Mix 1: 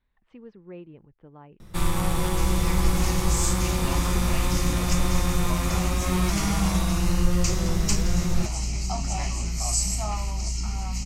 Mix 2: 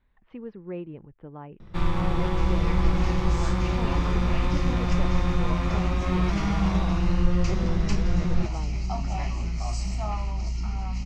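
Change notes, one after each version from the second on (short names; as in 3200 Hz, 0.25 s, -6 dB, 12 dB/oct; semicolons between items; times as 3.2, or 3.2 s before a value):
speech +7.0 dB; master: add air absorption 220 m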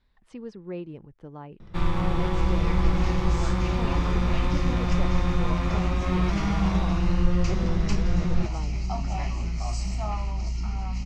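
speech: remove LPF 2900 Hz 24 dB/oct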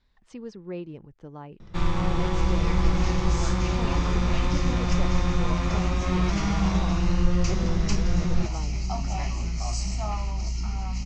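master: add synth low-pass 6700 Hz, resonance Q 2.2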